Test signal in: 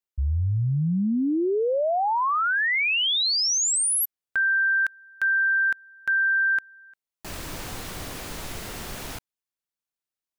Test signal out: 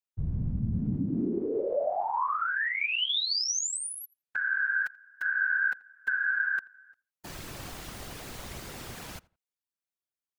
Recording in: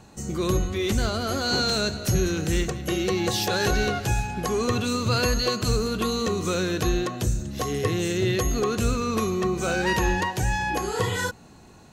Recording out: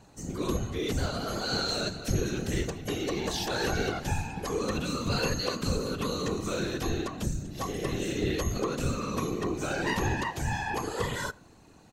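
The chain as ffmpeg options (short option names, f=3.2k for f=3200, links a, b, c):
-filter_complex "[0:a]afftfilt=real='hypot(re,im)*cos(2*PI*random(0))':imag='hypot(re,im)*sin(2*PI*random(1))':win_size=512:overlap=0.75,asplit=2[a][b];[b]adelay=84,lowpass=f=2.3k:p=1,volume=-22.5dB,asplit=2[c][d];[d]adelay=84,lowpass=f=2.3k:p=1,volume=0.27[e];[a][c][e]amix=inputs=3:normalize=0,acrossover=split=7700[f][g];[g]acompressor=threshold=-45dB:ratio=4:attack=1:release=60[h];[f][h]amix=inputs=2:normalize=0"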